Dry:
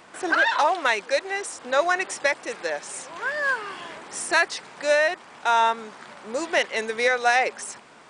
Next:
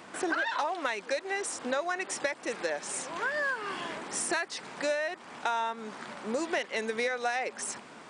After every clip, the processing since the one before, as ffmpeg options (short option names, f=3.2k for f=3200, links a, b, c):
-af "highpass=51,equalizer=f=240:t=o:w=1.2:g=5,acompressor=threshold=-28dB:ratio=6"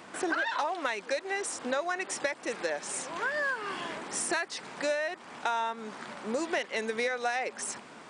-af anull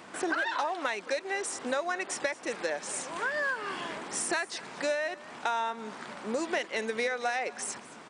-af "aecho=1:1:224:0.106"